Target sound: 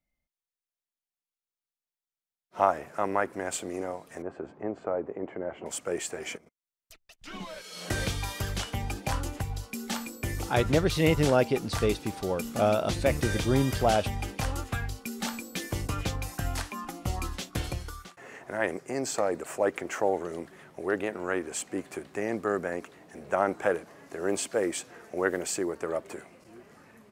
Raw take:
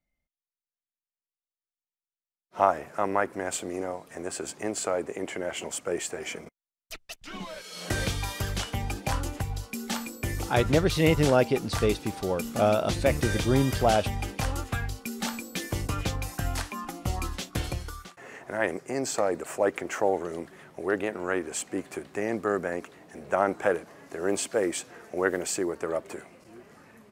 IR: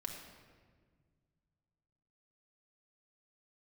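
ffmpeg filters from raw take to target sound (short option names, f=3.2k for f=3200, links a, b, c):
-filter_complex "[0:a]asettb=1/sr,asplit=3[a][b][c];[a]atrim=end=4.224[d];[b]atrim=start=4.22:end=5.66,asetpts=PTS-STARTPTS,afade=t=in:d=0.004:c=qsin,afade=t=out:st=1.436:d=0.004:c=qsin,lowpass=1.1k[e];[c]atrim=start=5.656[f];[d][e]acrossfade=d=0.004:c1=hsin:c2=qsin[g];[g][f]acrossfade=d=0.004:c1=qsin:c2=hsin,asplit=3[h][i][j];[h]afade=t=out:st=6.36:d=0.02[k];[i]acompressor=threshold=-50dB:ratio=10,afade=t=in:st=6.36:d=0.02,afade=t=out:st=7.18:d=0.02[l];[j]afade=t=in:st=7.18:d=0.02[m];[k][l][m]amix=inputs=3:normalize=0,volume=-1.5dB"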